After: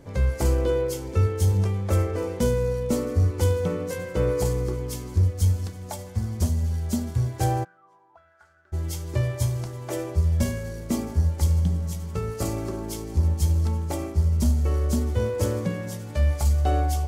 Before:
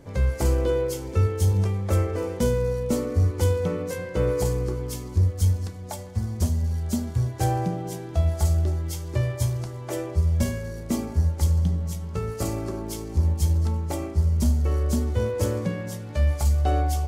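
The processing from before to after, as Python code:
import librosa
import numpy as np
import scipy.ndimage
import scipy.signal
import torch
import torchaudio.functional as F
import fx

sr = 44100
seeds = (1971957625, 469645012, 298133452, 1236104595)

y = fx.echo_wet_highpass(x, sr, ms=1083, feedback_pct=79, hz=1900.0, wet_db=-17)
y = fx.auto_wah(y, sr, base_hz=730.0, top_hz=1500.0, q=14.0, full_db=-21.5, direction='up', at=(7.63, 8.72), fade=0.02)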